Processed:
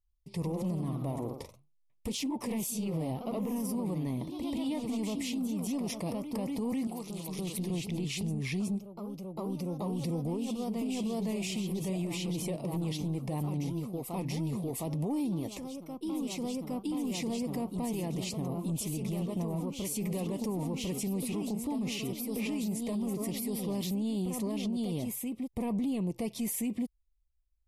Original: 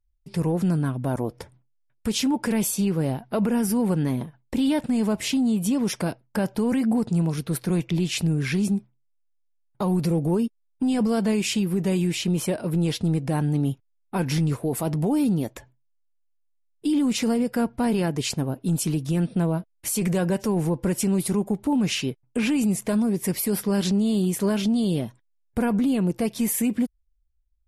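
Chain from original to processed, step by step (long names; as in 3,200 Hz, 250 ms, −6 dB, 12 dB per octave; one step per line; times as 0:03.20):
0:06.87–0:07.70: high-pass filter 1,100 Hz 6 dB per octave
soft clipping −15 dBFS, distortion −25 dB
Butterworth band-reject 1,500 Hz, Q 2
delay with pitch and tempo change per echo 119 ms, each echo +1 semitone, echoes 3, each echo −6 dB
brickwall limiter −21 dBFS, peak gain reduction 8 dB
level −6 dB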